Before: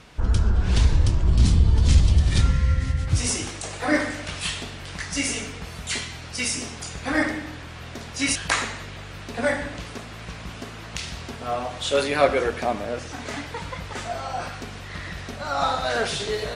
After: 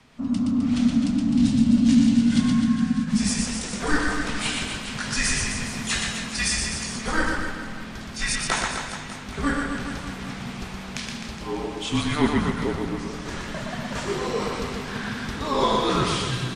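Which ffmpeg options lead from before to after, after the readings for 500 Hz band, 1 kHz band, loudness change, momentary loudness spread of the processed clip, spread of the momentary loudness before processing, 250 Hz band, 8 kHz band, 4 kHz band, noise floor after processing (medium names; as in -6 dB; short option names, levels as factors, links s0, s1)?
-3.0 dB, 0.0 dB, 0.0 dB, 13 LU, 16 LU, +9.5 dB, +1.0 dB, +1.0 dB, -36 dBFS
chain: -af "aecho=1:1:120|258|416.7|599.2|809.1:0.631|0.398|0.251|0.158|0.1,dynaudnorm=f=120:g=21:m=3.76,afreqshift=-300,volume=0.473"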